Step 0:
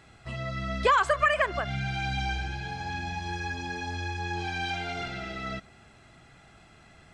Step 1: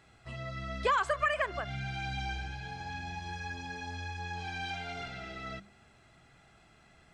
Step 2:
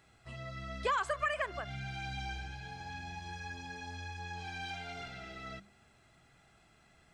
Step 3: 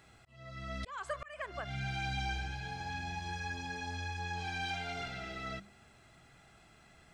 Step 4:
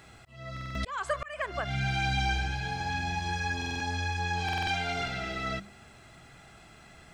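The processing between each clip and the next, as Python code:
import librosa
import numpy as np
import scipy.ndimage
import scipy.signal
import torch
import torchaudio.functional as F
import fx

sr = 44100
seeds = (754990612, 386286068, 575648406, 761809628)

y1 = fx.hum_notches(x, sr, base_hz=50, count=7)
y1 = F.gain(torch.from_numpy(y1), -6.0).numpy()
y2 = fx.high_shelf(y1, sr, hz=8800.0, db=7.5)
y2 = F.gain(torch.from_numpy(y2), -4.0).numpy()
y3 = fx.auto_swell(y2, sr, attack_ms=614.0)
y3 = F.gain(torch.from_numpy(y3), 4.0).numpy()
y4 = fx.buffer_glitch(y3, sr, at_s=(0.52, 3.57, 4.44), block=2048, repeats=4)
y4 = F.gain(torch.from_numpy(y4), 8.0).numpy()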